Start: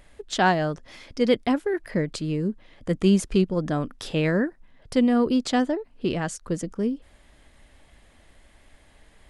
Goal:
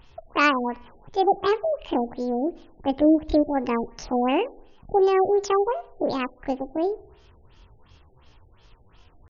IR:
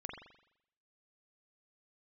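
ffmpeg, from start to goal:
-filter_complex "[0:a]asetrate=70004,aresample=44100,atempo=0.629961,asplit=2[a][b];[1:a]atrim=start_sample=2205,lowshelf=f=360:g=6.5[c];[b][c]afir=irnorm=-1:irlink=0,volume=-17dB[d];[a][d]amix=inputs=2:normalize=0,afftfilt=real='re*lt(b*sr/1024,820*pow(7100/820,0.5+0.5*sin(2*PI*2.8*pts/sr)))':imag='im*lt(b*sr/1024,820*pow(7100/820,0.5+0.5*sin(2*PI*2.8*pts/sr)))':win_size=1024:overlap=0.75"

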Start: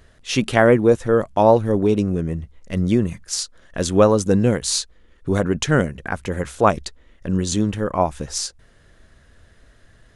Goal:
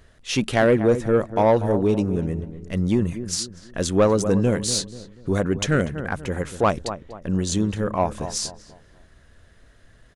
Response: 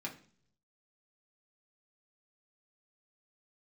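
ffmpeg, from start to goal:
-filter_complex "[0:a]asplit=2[a][b];[b]adelay=242,lowpass=f=1.3k:p=1,volume=-12dB,asplit=2[c][d];[d]adelay=242,lowpass=f=1.3k:p=1,volume=0.38,asplit=2[e][f];[f]adelay=242,lowpass=f=1.3k:p=1,volume=0.38,asplit=2[g][h];[h]adelay=242,lowpass=f=1.3k:p=1,volume=0.38[i];[a][c][e][g][i]amix=inputs=5:normalize=0,acontrast=47,volume=-7.5dB"

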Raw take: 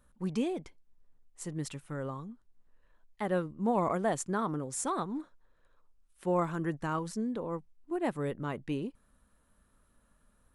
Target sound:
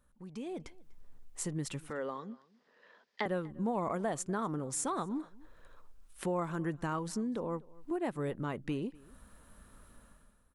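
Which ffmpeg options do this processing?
-filter_complex "[0:a]acompressor=threshold=-50dB:ratio=2.5,asettb=1/sr,asplit=3[a][b][c];[a]atrim=end=1.904[d];[b]atrim=start=1.9:end=3.26,asetpts=PTS-STARTPTS,afade=t=in:d=0.004:c=qsin,afade=t=out:st=1.356:d=0.004:c=qsin,highpass=f=220:w=0.5412,highpass=f=220:w=1.3066,equalizer=f=310:t=q:w=4:g=-7,equalizer=f=460:t=q:w=4:g=5,equalizer=f=1.9k:t=q:w=4:g=6,equalizer=f=3.3k:t=q:w=4:g=4,equalizer=f=4.9k:t=q:w=4:g=9,lowpass=f=5.9k:w=0.5412,lowpass=f=5.9k:w=1.3066[e];[c]atrim=start=3.256[f];[d][e]acrossfade=d=0.004:c1=hsin:c2=qsin[g];[g][f]acrossfade=d=0.004:c1=qsin:c2=hsin,dynaudnorm=f=110:g=9:m=15.5dB,asplit=2[h][i];[i]adelay=244.9,volume=-23dB,highshelf=f=4k:g=-5.51[j];[h][j]amix=inputs=2:normalize=0,volume=-4.5dB"

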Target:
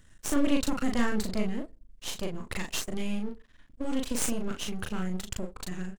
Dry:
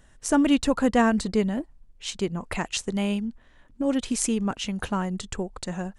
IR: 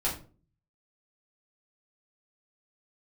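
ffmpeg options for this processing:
-filter_complex "[0:a]equalizer=f=660:w=1.1:g=-11,aeval=exprs='max(val(0),0)':c=same,asplit=2[a][b];[b]adelay=38,volume=-3.5dB[c];[a][c]amix=inputs=2:normalize=0,asplit=2[d][e];[e]asuperpass=centerf=530:order=4:qfactor=0.75[f];[1:a]atrim=start_sample=2205,asetrate=61740,aresample=44100[g];[f][g]afir=irnorm=-1:irlink=0,volume=-18.5dB[h];[d][h]amix=inputs=2:normalize=0"

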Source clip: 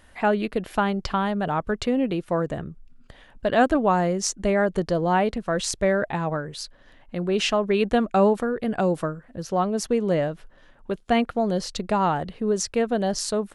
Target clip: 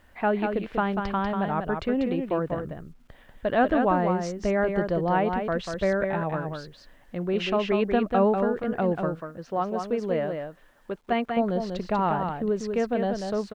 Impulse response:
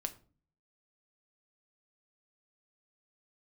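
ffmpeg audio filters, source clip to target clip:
-filter_complex "[0:a]lowpass=2.8k,aecho=1:1:192:0.531,acrusher=bits=10:mix=0:aa=0.000001,asettb=1/sr,asplit=3[a][b][c];[a]atrim=end=9.154[d];[b]atrim=start=9.15:end=11.37,asetpts=PTS-STARTPTS,afade=t=in:d=0.004:c=qsin,afade=t=out:st=2.216:d=0.004:c=qsin,lowshelf=f=200:g=-8.5[e];[c]atrim=start=11.366[f];[d][e]acrossfade=d=0.004:c1=hsin:c2=qsin[g];[g][f]acrossfade=d=0.004:c1=qsin:c2=hsin,volume=-3dB"

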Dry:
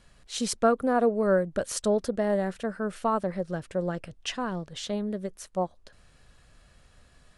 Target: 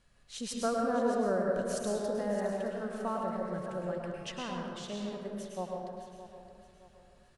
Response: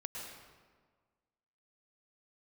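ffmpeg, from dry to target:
-filter_complex "[0:a]aecho=1:1:617|1234|1851|2468:0.224|0.0806|0.029|0.0104[a];[1:a]atrim=start_sample=2205[b];[a][b]afir=irnorm=-1:irlink=0,volume=-5.5dB"

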